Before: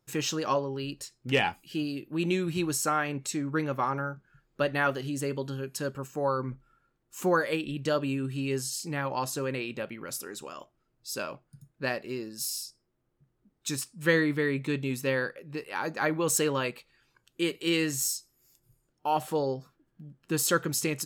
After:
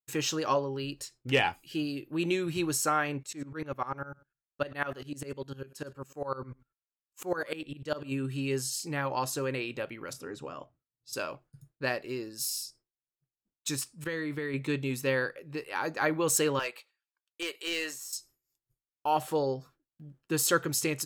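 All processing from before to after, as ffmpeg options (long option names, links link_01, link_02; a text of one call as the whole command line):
ffmpeg -i in.wav -filter_complex "[0:a]asettb=1/sr,asplit=3[link_01][link_02][link_03];[link_01]atrim=end=3.234[link_04];[link_02]atrim=start=3.23:end=8.12,asetpts=PTS-STARTPTS,afade=type=in:duration=0.004:curve=qsin,afade=type=out:start_time=4.886:duration=0.004:curve=qsin,aecho=1:1:111:0.0794,atrim=end_sample=215649,aeval=exprs='val(0)*pow(10,-20*if(lt(mod(-10*n/s,1),2*abs(-10)/1000),1-mod(-10*n/s,1)/(2*abs(-10)/1000),(mod(-10*n/s,1)-2*abs(-10)/1000)/(1-2*abs(-10)/1000))/20)':channel_layout=same[link_05];[link_03]atrim=start=8.116[link_06];[link_04][link_05]acrossfade=duration=0.004:curve1=hsin:curve2=qsin[link_07];[link_07][link_06]acrossfade=duration=0.004:curve1=qsin:curve2=hsin,asettb=1/sr,asplit=3[link_08][link_09][link_10];[link_08]atrim=end=10.134[link_11];[link_09]atrim=start=10.13:end=11.13,asetpts=PTS-STARTPTS,afade=type=in:duration=0.004:curve=qsin,afade=type=out:start_time=0.996:duration=0.004:curve=qsin,highpass=110,aemphasis=mode=reproduction:type=riaa,bandreject=frequency=360:width=6.4[link_12];[link_10]atrim=start=11.126[link_13];[link_11][link_12]acrossfade=duration=0.004:curve1=hsin:curve2=qsin[link_14];[link_14][link_13]acrossfade=duration=0.004:curve1=qsin:curve2=hsin,asettb=1/sr,asplit=3[link_15][link_16][link_17];[link_15]atrim=end=14.044[link_18];[link_16]atrim=start=14.04:end=14.54,asetpts=PTS-STARTPTS,afade=type=in:duration=0.004:curve=qsin,afade=type=out:start_time=0.496:duration=0.004:curve=qsin,agate=range=-33dB:threshold=-32dB:ratio=3:release=100:detection=peak,acompressor=threshold=-29dB:ratio=12:attack=3.2:release=140:knee=1:detection=peak[link_19];[link_17]atrim=start=14.536[link_20];[link_18][link_19]acrossfade=duration=0.004:curve1=hsin:curve2=qsin[link_21];[link_21][link_20]acrossfade=duration=0.004:curve1=qsin:curve2=hsin,asettb=1/sr,asplit=3[link_22][link_23][link_24];[link_22]atrim=end=16.594[link_25];[link_23]atrim=start=16.59:end=18.13,asetpts=PTS-STARTPTS,afade=type=in:duration=0.004:curve=qsin,afade=type=out:start_time=1.536:duration=0.004:curve=qsin,highpass=610,deesser=0.75,aeval=exprs='clip(val(0),-1,0.0422)':channel_layout=same[link_26];[link_24]atrim=start=18.126[link_27];[link_25][link_26]acrossfade=duration=0.004:curve1=hsin:curve2=qsin[link_28];[link_28][link_27]acrossfade=duration=0.004:curve1=qsin:curve2=hsin,agate=range=-33dB:threshold=-51dB:ratio=3:detection=peak,equalizer=frequency=200:width_type=o:width=0.3:gain=-12" out.wav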